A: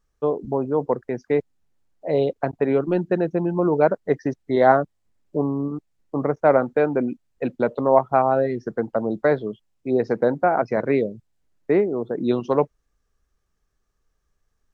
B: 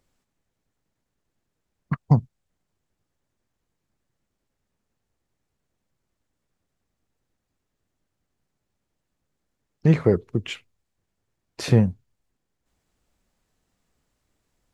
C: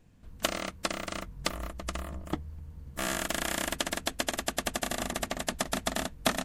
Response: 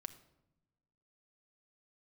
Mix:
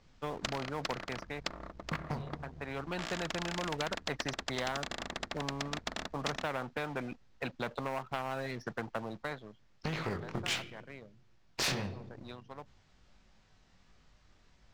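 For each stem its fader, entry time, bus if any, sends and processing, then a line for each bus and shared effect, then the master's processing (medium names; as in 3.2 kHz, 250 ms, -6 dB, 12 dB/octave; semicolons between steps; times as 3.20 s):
-5.5 dB, 0.00 s, bus A, no send, auto duck -24 dB, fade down 0.90 s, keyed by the second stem
+3.0 dB, 0.00 s, bus A, send -4 dB, compression 5:1, threshold -25 dBFS, peak gain reduction 13 dB; chorus 1.5 Hz, delay 18.5 ms, depth 4.4 ms
-14.0 dB, 0.00 s, no bus, no send, local Wiener filter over 15 samples
bus A: 0.0 dB, peaking EQ 370 Hz -10.5 dB 1.3 oct; compression 10:1, threshold -28 dBFS, peak gain reduction 11 dB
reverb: on, pre-delay 5 ms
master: low-pass 5.7 kHz 24 dB/octave; waveshaping leveller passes 1; spectrum-flattening compressor 2:1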